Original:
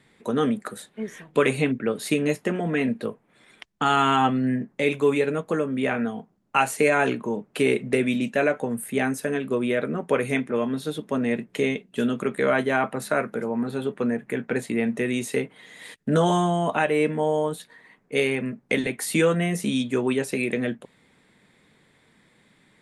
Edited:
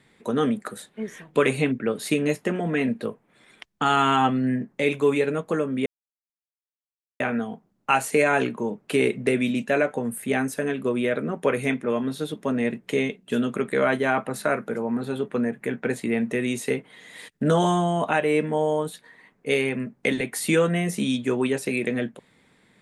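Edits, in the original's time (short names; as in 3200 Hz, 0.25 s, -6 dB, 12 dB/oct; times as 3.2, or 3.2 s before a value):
5.86 insert silence 1.34 s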